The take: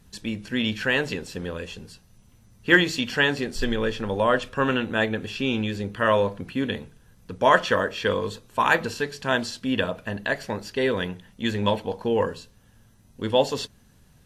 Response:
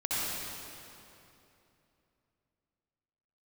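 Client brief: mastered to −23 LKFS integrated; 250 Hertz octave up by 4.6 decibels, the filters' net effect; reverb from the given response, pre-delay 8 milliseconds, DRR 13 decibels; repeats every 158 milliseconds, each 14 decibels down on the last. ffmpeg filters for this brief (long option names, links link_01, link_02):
-filter_complex "[0:a]equalizer=frequency=250:width_type=o:gain=5.5,aecho=1:1:158|316:0.2|0.0399,asplit=2[link_01][link_02];[1:a]atrim=start_sample=2205,adelay=8[link_03];[link_02][link_03]afir=irnorm=-1:irlink=0,volume=-22dB[link_04];[link_01][link_04]amix=inputs=2:normalize=0"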